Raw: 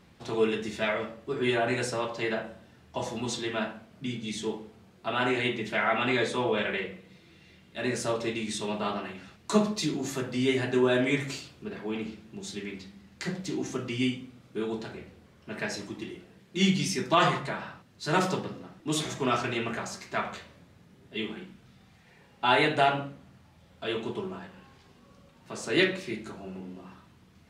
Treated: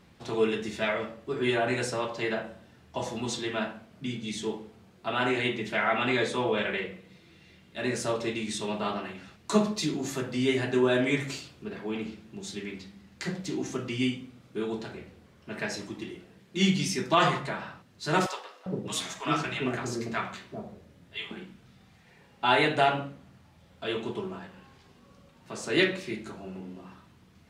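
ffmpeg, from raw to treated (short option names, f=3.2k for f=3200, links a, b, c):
-filter_complex "[0:a]asettb=1/sr,asplit=3[a][b][c];[a]atrim=end=18.264[d];[b]atrim=start=18.26:end=21.31,asetpts=PTS-STARTPTS,afade=t=in:d=0.004:c=qsin,afade=t=out:st=3.046:d=0.004:c=qsin,acrossover=split=590[e][f];[e]adelay=400[g];[g][f]amix=inputs=2:normalize=0,atrim=end_sample=134505[h];[c]atrim=start=21.306[i];[d][h]acrossfade=d=0.004:c1=hsin:c2=qsin[j];[j][i]acrossfade=d=0.004:c1=qsin:c2=hsin"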